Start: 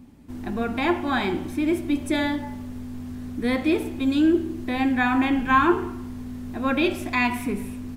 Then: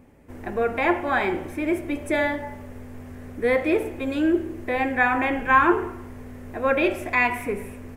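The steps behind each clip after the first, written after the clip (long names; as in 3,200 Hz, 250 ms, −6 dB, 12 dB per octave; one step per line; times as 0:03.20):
octave-band graphic EQ 250/500/2,000/4,000 Hz −8/+12/+8/−8 dB
level −2 dB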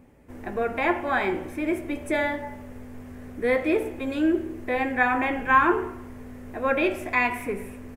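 double-tracking delay 16 ms −12.5 dB
level −2 dB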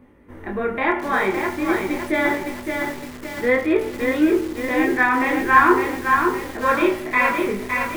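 convolution reverb RT60 0.15 s, pre-delay 3 ms, DRR 17 dB
chorus effect 0.49 Hz, delay 19.5 ms, depth 7.8 ms
feedback echo at a low word length 562 ms, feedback 55%, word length 6 bits, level −4 dB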